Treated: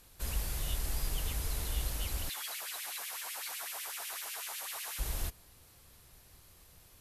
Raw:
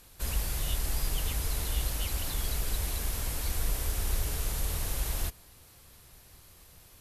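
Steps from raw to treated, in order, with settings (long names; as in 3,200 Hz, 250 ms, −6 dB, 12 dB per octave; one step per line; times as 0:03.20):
0:02.29–0:04.99: auto-filter high-pass sine 8 Hz 750–2,700 Hz
level −4 dB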